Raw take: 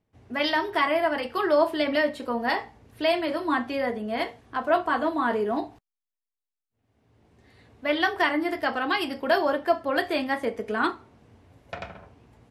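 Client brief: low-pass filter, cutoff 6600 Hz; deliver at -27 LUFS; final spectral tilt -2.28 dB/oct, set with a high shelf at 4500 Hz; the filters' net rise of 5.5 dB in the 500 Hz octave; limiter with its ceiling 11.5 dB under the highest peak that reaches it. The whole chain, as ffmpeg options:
-af "lowpass=6.6k,equalizer=f=500:t=o:g=7.5,highshelf=f=4.5k:g=-5,alimiter=limit=-17.5dB:level=0:latency=1"

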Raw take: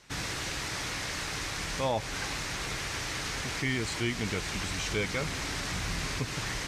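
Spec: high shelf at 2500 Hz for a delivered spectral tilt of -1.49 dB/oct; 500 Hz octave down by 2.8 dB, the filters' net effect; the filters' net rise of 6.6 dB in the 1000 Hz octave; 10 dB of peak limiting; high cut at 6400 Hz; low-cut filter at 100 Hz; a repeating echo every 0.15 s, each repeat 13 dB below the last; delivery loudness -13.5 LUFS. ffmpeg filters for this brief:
-af "highpass=100,lowpass=6.4k,equalizer=f=500:t=o:g=-6.5,equalizer=f=1k:t=o:g=8.5,highshelf=f=2.5k:g=8,alimiter=limit=-23.5dB:level=0:latency=1,aecho=1:1:150|300|450:0.224|0.0493|0.0108,volume=17.5dB"

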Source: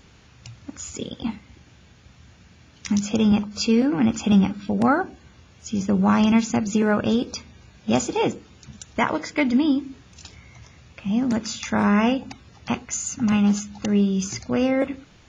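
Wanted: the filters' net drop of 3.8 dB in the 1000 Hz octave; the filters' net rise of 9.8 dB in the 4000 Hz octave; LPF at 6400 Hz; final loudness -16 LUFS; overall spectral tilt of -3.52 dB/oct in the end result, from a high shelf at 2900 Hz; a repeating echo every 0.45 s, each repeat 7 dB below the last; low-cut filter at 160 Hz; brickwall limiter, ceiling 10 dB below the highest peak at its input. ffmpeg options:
-af "highpass=160,lowpass=6.4k,equalizer=f=1k:t=o:g=-6.5,highshelf=f=2.9k:g=7.5,equalizer=f=4k:t=o:g=8,alimiter=limit=-14.5dB:level=0:latency=1,aecho=1:1:450|900|1350|1800|2250:0.447|0.201|0.0905|0.0407|0.0183,volume=8.5dB"

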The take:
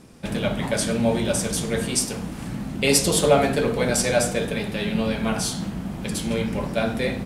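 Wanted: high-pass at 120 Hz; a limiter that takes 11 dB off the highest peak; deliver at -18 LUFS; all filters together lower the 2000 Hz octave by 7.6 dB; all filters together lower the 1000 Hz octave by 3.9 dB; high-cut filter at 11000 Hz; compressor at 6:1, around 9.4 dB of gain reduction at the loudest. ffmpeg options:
-af "highpass=120,lowpass=11k,equalizer=f=1k:t=o:g=-4,equalizer=f=2k:t=o:g=-9,acompressor=threshold=-23dB:ratio=6,volume=14dB,alimiter=limit=-9dB:level=0:latency=1"

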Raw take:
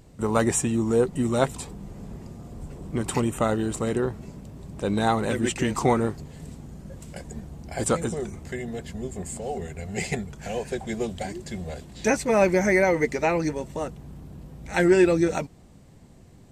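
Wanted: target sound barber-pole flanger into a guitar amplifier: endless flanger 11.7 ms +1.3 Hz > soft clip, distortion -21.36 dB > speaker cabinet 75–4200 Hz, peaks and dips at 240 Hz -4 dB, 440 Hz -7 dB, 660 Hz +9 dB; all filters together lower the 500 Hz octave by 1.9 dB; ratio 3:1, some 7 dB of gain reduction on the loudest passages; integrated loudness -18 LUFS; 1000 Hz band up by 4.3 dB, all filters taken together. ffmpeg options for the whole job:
-filter_complex "[0:a]equalizer=f=500:t=o:g=-6,equalizer=f=1k:t=o:g=5,acompressor=threshold=-25dB:ratio=3,asplit=2[a][b];[b]adelay=11.7,afreqshift=1.3[c];[a][c]amix=inputs=2:normalize=1,asoftclip=threshold=-21.5dB,highpass=75,equalizer=f=240:t=q:w=4:g=-4,equalizer=f=440:t=q:w=4:g=-7,equalizer=f=660:t=q:w=4:g=9,lowpass=f=4.2k:w=0.5412,lowpass=f=4.2k:w=1.3066,volume=17dB"

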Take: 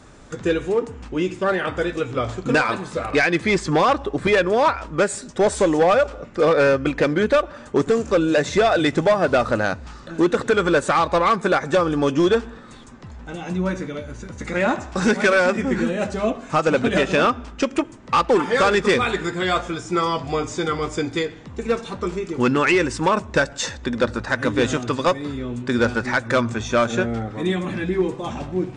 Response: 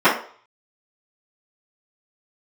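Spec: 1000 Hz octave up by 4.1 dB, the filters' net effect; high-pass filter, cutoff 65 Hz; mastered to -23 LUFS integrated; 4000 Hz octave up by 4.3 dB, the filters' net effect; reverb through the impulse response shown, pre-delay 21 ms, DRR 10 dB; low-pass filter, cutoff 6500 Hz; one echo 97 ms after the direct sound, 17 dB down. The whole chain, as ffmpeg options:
-filter_complex "[0:a]highpass=65,lowpass=6.5k,equalizer=f=1k:t=o:g=5,equalizer=f=4k:t=o:g=5.5,aecho=1:1:97:0.141,asplit=2[a][b];[1:a]atrim=start_sample=2205,adelay=21[c];[b][c]afir=irnorm=-1:irlink=0,volume=-35dB[d];[a][d]amix=inputs=2:normalize=0,volume=-4.5dB"

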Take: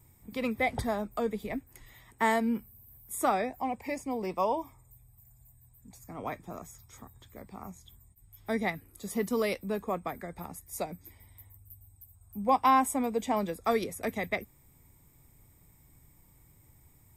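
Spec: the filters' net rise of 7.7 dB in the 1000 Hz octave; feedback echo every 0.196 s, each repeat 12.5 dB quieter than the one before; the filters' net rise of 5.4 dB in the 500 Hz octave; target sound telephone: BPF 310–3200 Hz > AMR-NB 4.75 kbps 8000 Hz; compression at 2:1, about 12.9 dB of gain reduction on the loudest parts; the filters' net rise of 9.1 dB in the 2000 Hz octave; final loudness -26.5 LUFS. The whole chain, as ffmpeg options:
-af "equalizer=f=500:t=o:g=5,equalizer=f=1k:t=o:g=6,equalizer=f=2k:t=o:g=9,acompressor=threshold=-35dB:ratio=2,highpass=310,lowpass=3.2k,aecho=1:1:196|392|588:0.237|0.0569|0.0137,volume=9.5dB" -ar 8000 -c:a libopencore_amrnb -b:a 4750

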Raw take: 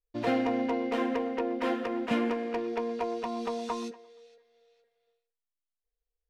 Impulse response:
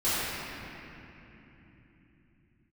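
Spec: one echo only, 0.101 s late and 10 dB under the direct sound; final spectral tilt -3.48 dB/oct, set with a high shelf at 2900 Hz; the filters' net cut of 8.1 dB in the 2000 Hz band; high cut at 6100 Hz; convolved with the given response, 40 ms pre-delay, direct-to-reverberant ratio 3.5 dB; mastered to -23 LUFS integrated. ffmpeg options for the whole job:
-filter_complex "[0:a]lowpass=6.1k,equalizer=f=2k:t=o:g=-7.5,highshelf=f=2.9k:g=-6,aecho=1:1:101:0.316,asplit=2[a][b];[1:a]atrim=start_sample=2205,adelay=40[c];[b][c]afir=irnorm=-1:irlink=0,volume=-17.5dB[d];[a][d]amix=inputs=2:normalize=0,volume=6.5dB"

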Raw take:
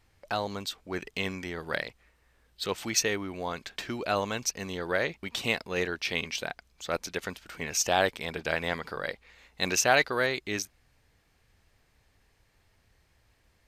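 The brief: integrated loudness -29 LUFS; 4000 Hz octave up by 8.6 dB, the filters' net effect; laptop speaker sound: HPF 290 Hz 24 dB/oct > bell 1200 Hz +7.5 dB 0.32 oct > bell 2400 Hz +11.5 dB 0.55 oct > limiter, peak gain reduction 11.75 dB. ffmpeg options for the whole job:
-af "highpass=f=290:w=0.5412,highpass=f=290:w=1.3066,equalizer=f=1.2k:t=o:w=0.32:g=7.5,equalizer=f=2.4k:t=o:w=0.55:g=11.5,equalizer=f=4k:t=o:g=7.5,volume=-1.5dB,alimiter=limit=-14.5dB:level=0:latency=1"

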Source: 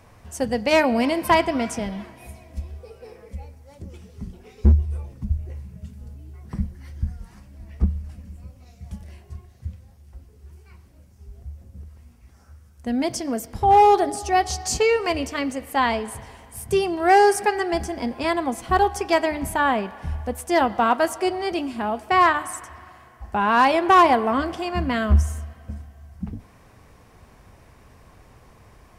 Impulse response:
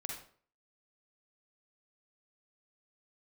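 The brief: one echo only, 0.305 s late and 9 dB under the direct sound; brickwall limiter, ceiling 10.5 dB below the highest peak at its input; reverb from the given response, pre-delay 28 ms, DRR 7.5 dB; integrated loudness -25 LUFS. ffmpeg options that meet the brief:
-filter_complex "[0:a]alimiter=limit=-15.5dB:level=0:latency=1,aecho=1:1:305:0.355,asplit=2[a][b];[1:a]atrim=start_sample=2205,adelay=28[c];[b][c]afir=irnorm=-1:irlink=0,volume=-7dB[d];[a][d]amix=inputs=2:normalize=0,volume=0.5dB"

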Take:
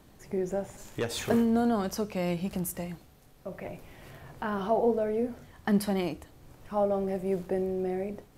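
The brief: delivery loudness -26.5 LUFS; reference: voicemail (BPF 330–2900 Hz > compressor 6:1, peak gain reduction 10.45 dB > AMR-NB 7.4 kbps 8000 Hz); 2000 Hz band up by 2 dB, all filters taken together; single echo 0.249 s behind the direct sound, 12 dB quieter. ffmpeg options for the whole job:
-af "highpass=330,lowpass=2.9k,equalizer=f=2k:t=o:g=3.5,aecho=1:1:249:0.251,acompressor=threshold=-32dB:ratio=6,volume=12.5dB" -ar 8000 -c:a libopencore_amrnb -b:a 7400

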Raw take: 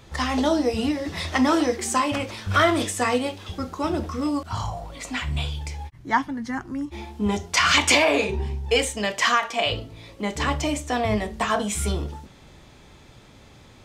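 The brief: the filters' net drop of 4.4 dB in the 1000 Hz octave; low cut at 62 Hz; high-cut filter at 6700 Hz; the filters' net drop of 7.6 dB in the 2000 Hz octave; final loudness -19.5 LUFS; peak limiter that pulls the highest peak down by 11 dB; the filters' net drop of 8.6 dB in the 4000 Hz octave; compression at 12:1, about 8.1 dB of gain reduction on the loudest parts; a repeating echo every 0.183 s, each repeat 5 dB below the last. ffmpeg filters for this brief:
-af "highpass=62,lowpass=6.7k,equalizer=f=1k:t=o:g=-3.5,equalizer=f=2k:t=o:g=-6,equalizer=f=4k:t=o:g=-9,acompressor=threshold=-25dB:ratio=12,alimiter=level_in=2dB:limit=-24dB:level=0:latency=1,volume=-2dB,aecho=1:1:183|366|549|732|915|1098|1281:0.562|0.315|0.176|0.0988|0.0553|0.031|0.0173,volume=14dB"

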